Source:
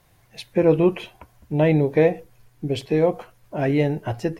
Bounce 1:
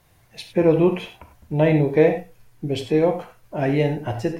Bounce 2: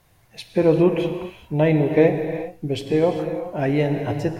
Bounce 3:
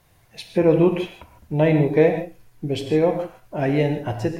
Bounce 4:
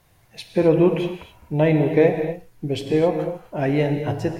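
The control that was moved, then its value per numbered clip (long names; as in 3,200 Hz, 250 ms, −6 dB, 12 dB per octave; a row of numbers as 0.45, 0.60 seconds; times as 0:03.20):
reverb whose tail is shaped and stops, gate: 120, 430, 180, 290 milliseconds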